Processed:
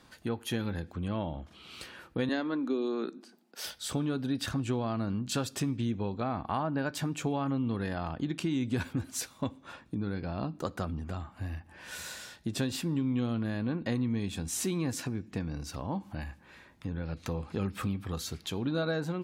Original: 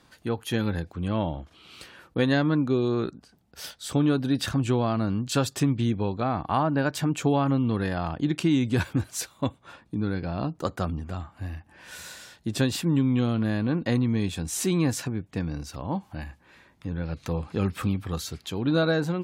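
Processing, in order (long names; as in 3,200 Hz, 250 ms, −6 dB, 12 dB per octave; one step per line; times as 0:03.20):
0:02.29–0:03.66: Butterworth high-pass 210 Hz 36 dB per octave
downward compressor 2 to 1, threshold −34 dBFS, peak gain reduction 9 dB
on a send: convolution reverb RT60 0.65 s, pre-delay 3 ms, DRR 16 dB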